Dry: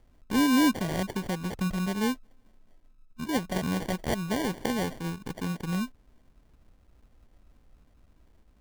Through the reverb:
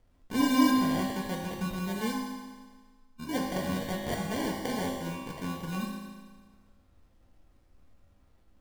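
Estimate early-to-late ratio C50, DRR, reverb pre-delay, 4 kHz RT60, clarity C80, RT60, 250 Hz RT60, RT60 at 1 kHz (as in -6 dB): 1.5 dB, -2.5 dB, 4 ms, 1.5 s, 3.5 dB, 1.5 s, 1.5 s, 1.5 s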